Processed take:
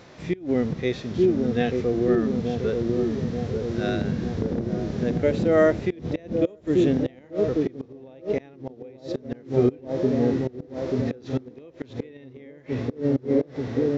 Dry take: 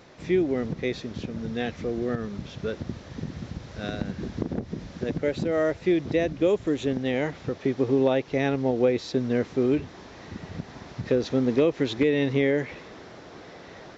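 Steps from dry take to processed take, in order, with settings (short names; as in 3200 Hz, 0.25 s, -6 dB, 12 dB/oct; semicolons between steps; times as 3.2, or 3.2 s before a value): dark delay 0.886 s, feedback 69%, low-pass 700 Hz, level -3 dB; flipped gate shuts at -13 dBFS, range -29 dB; harmonic-percussive split percussive -10 dB; gain +6.5 dB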